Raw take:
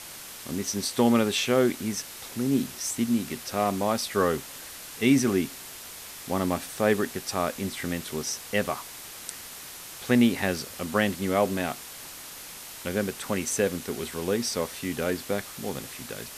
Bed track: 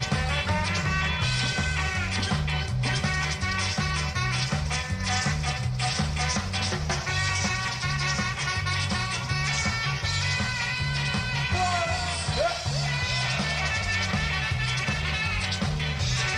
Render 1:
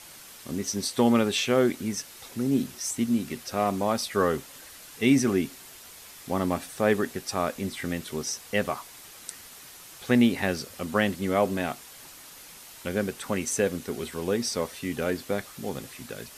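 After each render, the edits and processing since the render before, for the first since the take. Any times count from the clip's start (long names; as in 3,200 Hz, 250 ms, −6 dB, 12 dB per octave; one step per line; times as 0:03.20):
broadband denoise 6 dB, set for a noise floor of −42 dBFS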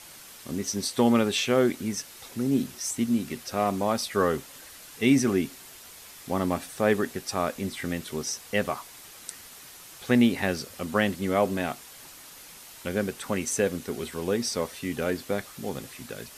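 no processing that can be heard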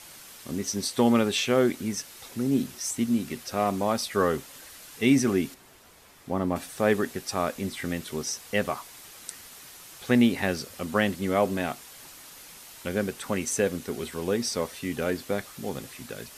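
0:05.54–0:06.56: high-shelf EQ 2,100 Hz −11 dB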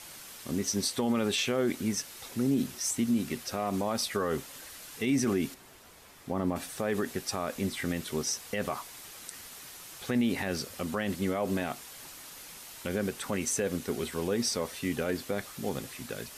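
brickwall limiter −19 dBFS, peak gain reduction 10.5 dB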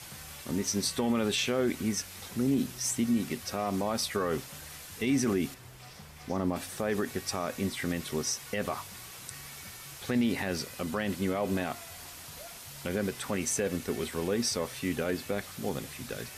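mix in bed track −24 dB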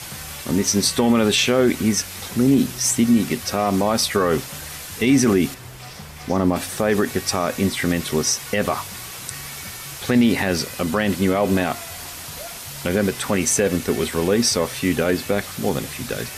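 level +11.5 dB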